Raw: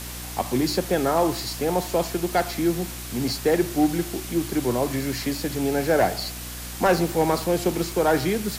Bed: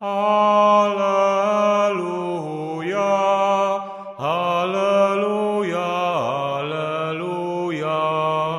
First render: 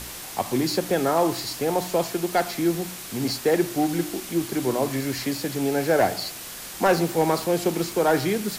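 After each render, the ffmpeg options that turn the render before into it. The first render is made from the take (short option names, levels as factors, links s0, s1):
-af "bandreject=f=60:t=h:w=4,bandreject=f=120:t=h:w=4,bandreject=f=180:t=h:w=4,bandreject=f=240:t=h:w=4,bandreject=f=300:t=h:w=4"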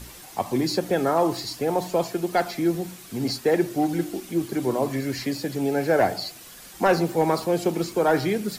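-af "afftdn=nr=9:nf=-37"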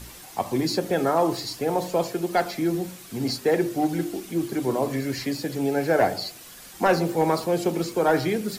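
-af "bandreject=f=49.09:t=h:w=4,bandreject=f=98.18:t=h:w=4,bandreject=f=147.27:t=h:w=4,bandreject=f=196.36:t=h:w=4,bandreject=f=245.45:t=h:w=4,bandreject=f=294.54:t=h:w=4,bandreject=f=343.63:t=h:w=4,bandreject=f=392.72:t=h:w=4,bandreject=f=441.81:t=h:w=4,bandreject=f=490.9:t=h:w=4,bandreject=f=539.99:t=h:w=4,bandreject=f=589.08:t=h:w=4,bandreject=f=638.17:t=h:w=4"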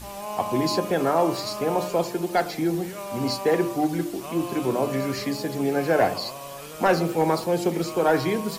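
-filter_complex "[1:a]volume=0.168[s0];[0:a][s0]amix=inputs=2:normalize=0"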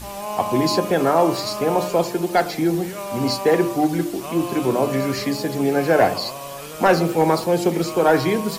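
-af "volume=1.68"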